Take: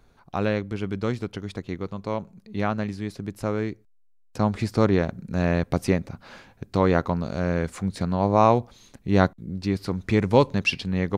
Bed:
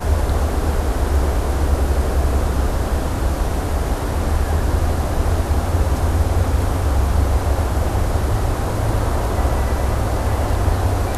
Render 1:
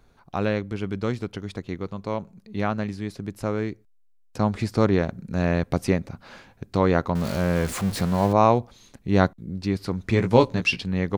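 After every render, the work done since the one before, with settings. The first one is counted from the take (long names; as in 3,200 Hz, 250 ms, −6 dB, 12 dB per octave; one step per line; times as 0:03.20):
0:07.15–0:08.33: converter with a step at zero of −28 dBFS
0:10.11–0:10.81: double-tracking delay 17 ms −6 dB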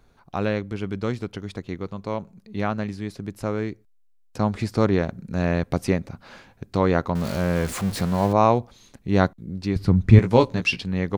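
0:09.76–0:10.19: bass and treble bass +14 dB, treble −4 dB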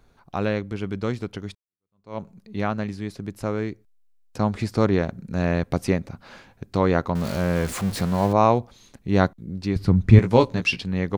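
0:01.55–0:02.18: fade in exponential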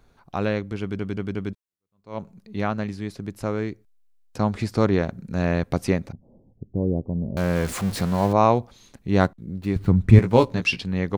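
0:00.81: stutter in place 0.18 s, 4 plays
0:06.12–0:07.37: Gaussian smoothing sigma 18 samples
0:09.20–0:10.52: running median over 9 samples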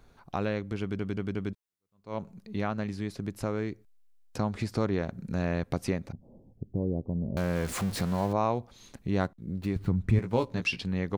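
downward compressor 2 to 1, threshold −31 dBFS, peak gain reduction 13.5 dB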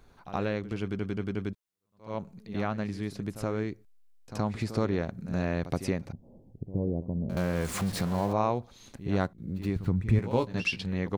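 echo ahead of the sound 73 ms −13 dB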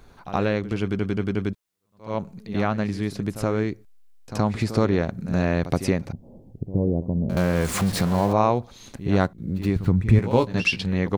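level +7.5 dB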